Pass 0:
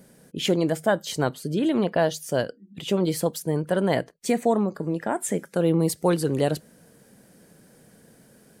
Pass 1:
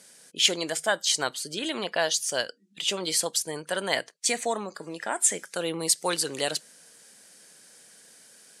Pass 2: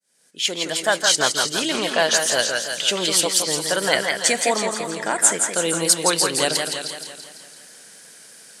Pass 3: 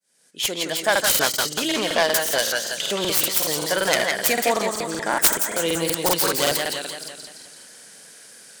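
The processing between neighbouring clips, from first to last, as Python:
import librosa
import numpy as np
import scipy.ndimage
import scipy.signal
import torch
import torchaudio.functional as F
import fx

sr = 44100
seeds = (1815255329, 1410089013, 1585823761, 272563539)

y1 = fx.weighting(x, sr, curve='ITU-R 468')
y1 = y1 * librosa.db_to_amplitude(-1.5)
y2 = fx.fade_in_head(y1, sr, length_s=1.07)
y2 = fx.echo_stepped(y2, sr, ms=155, hz=1600.0, octaves=1.4, feedback_pct=70, wet_db=-3.5)
y2 = fx.echo_warbled(y2, sr, ms=168, feedback_pct=56, rate_hz=2.8, cents=93, wet_db=-6.0)
y2 = y2 * librosa.db_to_amplitude(6.5)
y3 = fx.self_delay(y2, sr, depth_ms=0.15)
y3 = fx.buffer_crackle(y3, sr, first_s=0.91, period_s=0.19, block=2048, kind='repeat')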